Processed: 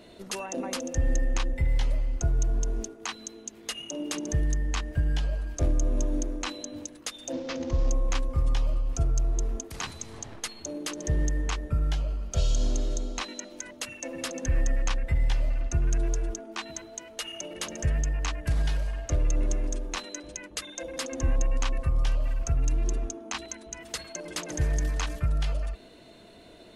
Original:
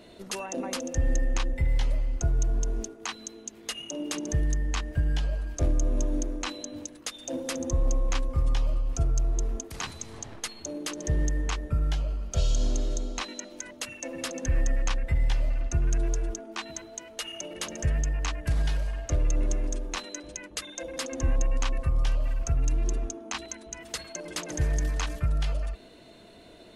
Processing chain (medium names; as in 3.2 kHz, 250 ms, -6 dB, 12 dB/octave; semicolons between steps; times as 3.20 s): 7.32–7.90 s: CVSD coder 32 kbps